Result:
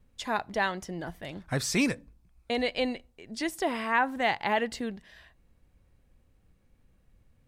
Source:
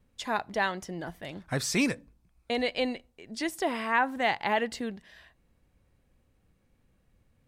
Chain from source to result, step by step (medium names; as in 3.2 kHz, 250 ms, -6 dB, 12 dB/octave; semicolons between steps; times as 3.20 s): bass shelf 67 Hz +7.5 dB